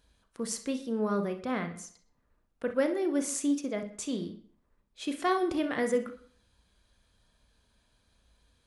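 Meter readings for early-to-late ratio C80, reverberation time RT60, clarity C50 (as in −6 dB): 16.5 dB, non-exponential decay, 10.5 dB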